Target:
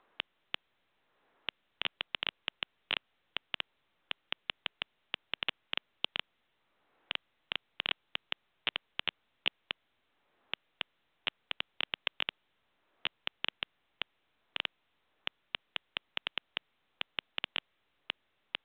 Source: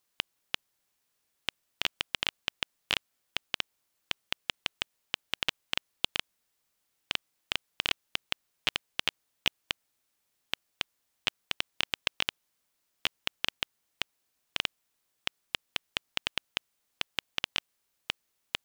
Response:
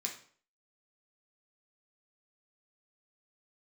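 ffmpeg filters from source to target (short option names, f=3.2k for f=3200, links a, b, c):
-filter_complex "[0:a]acrossover=split=250|1700[a][b][c];[a]alimiter=level_in=19dB:limit=-24dB:level=0:latency=1:release=289,volume=-19dB[d];[b]acompressor=mode=upward:threshold=-54dB:ratio=2.5[e];[d][e][c]amix=inputs=3:normalize=0,volume=-3.5dB" -ar 8000 -c:a pcm_mulaw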